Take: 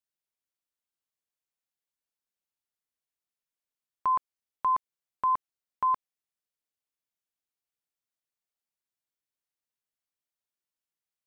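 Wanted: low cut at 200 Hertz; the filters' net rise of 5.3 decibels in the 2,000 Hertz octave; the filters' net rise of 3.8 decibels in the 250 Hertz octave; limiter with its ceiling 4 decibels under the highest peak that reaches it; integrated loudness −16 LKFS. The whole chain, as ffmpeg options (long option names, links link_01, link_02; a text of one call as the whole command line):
ffmpeg -i in.wav -af "highpass=200,equalizer=frequency=250:width_type=o:gain=6.5,equalizer=frequency=2000:width_type=o:gain=7,volume=15.5dB,alimiter=limit=-6.5dB:level=0:latency=1" out.wav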